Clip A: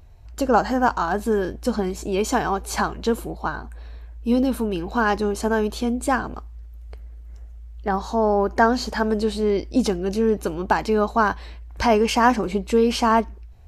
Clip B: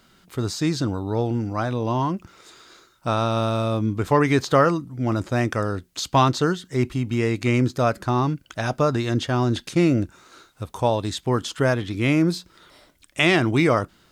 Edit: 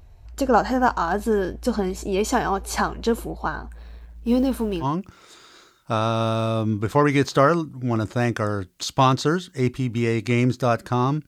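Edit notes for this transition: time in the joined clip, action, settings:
clip A
3.71–4.86 G.711 law mismatch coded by A
4.83 switch to clip B from 1.99 s, crossfade 0.06 s

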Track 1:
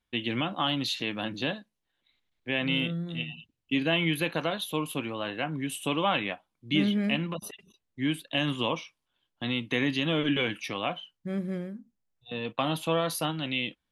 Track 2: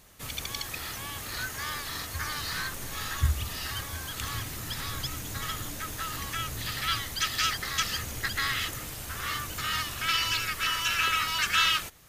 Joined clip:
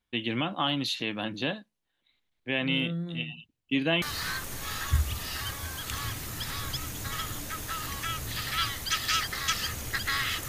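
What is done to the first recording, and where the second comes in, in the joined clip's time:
track 1
4.02 switch to track 2 from 2.32 s

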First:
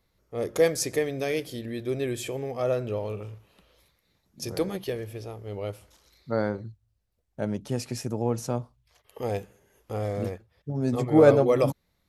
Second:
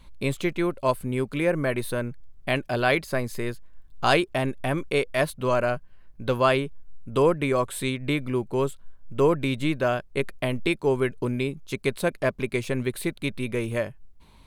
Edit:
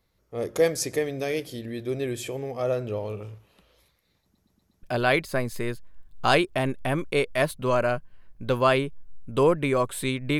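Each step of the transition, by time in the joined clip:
first
4.23 stutter in place 0.12 s, 5 plays
4.83 switch to second from 2.62 s

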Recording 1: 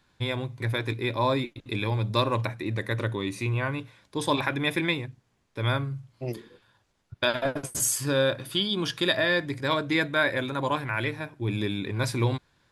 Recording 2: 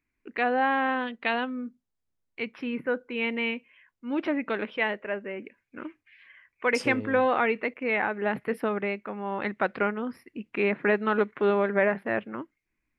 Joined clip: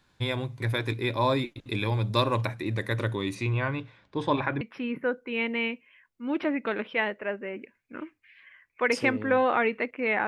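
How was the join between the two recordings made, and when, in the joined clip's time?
recording 1
3.34–4.61 LPF 6600 Hz -> 1700 Hz
4.61 switch to recording 2 from 2.44 s

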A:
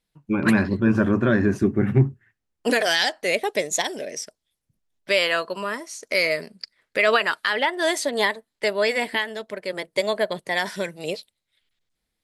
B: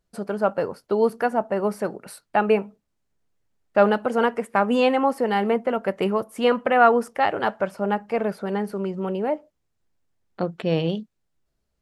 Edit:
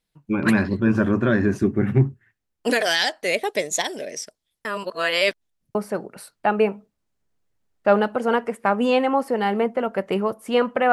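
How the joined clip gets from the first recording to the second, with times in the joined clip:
A
4.65–5.75 reverse
5.75 switch to B from 1.65 s

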